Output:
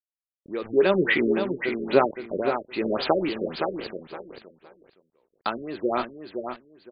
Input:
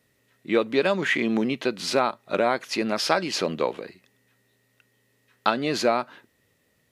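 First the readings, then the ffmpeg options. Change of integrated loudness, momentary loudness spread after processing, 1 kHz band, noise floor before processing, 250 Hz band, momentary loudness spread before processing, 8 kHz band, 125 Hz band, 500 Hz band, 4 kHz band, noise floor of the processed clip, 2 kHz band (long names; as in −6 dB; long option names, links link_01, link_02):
−1.0 dB, 16 LU, −2.0 dB, −68 dBFS, −0.5 dB, 6 LU, below −40 dB, −0.5 dB, +1.0 dB, −6.0 dB, below −85 dBFS, −1.5 dB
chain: -filter_complex "[0:a]adynamicequalizer=threshold=0.0126:dfrequency=370:dqfactor=3.1:tfrequency=370:tqfactor=3.1:attack=5:release=100:ratio=0.375:range=3.5:mode=boostabove:tftype=bell,asplit=2[link_01][link_02];[link_02]acompressor=threshold=-35dB:ratio=10,volume=-1dB[link_03];[link_01][link_03]amix=inputs=2:normalize=0,flanger=delay=3.9:depth=8.7:regen=75:speed=0.41:shape=triangular,acrusher=bits=5:mix=0:aa=0.000001,tremolo=f=0.97:d=0.8,asplit=2[link_04][link_05];[link_05]aecho=0:1:515|1030|1545:0.447|0.0983|0.0216[link_06];[link_04][link_06]amix=inputs=2:normalize=0,afftfilt=real='re*lt(b*sr/1024,570*pow(5000/570,0.5+0.5*sin(2*PI*3.7*pts/sr)))':imag='im*lt(b*sr/1024,570*pow(5000/570,0.5+0.5*sin(2*PI*3.7*pts/sr)))':win_size=1024:overlap=0.75,volume=5dB"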